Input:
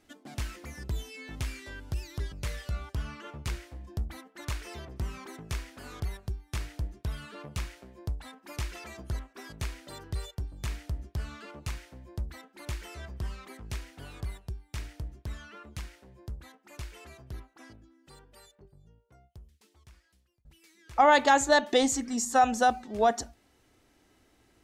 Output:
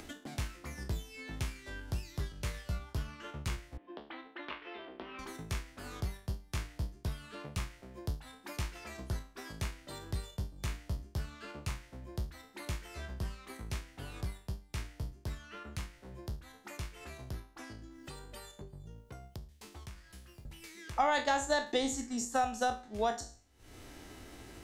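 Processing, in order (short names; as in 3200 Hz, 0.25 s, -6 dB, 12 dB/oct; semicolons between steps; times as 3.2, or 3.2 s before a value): spectral trails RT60 0.41 s; 3.77–5.19 elliptic band-pass 280–3200 Hz, stop band 40 dB; upward compressor, threshold -40 dBFS; transient shaper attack +2 dB, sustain -5 dB; three-band squash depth 40%; gain -4 dB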